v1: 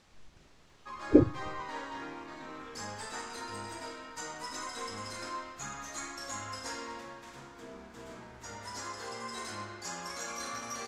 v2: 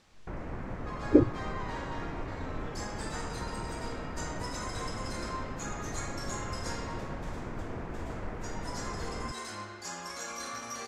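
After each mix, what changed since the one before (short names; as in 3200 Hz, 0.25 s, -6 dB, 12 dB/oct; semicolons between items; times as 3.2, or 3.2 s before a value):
first sound: unmuted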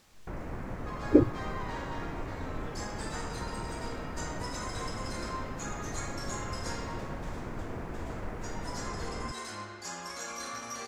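speech: remove air absorption 58 m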